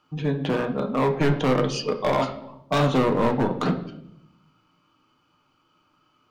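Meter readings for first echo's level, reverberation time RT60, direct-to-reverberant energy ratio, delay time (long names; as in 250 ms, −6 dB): no echo audible, 0.75 s, 4.5 dB, no echo audible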